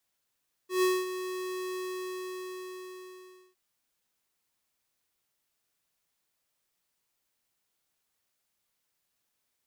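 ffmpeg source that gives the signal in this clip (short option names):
-f lavfi -i "aevalsrc='0.0631*(2*lt(mod(369*t,1),0.5)-1)':d=2.86:s=44100,afade=t=in:d=0.135,afade=t=out:st=0.135:d=0.227:silence=0.266,afade=t=out:st=1.06:d=1.8"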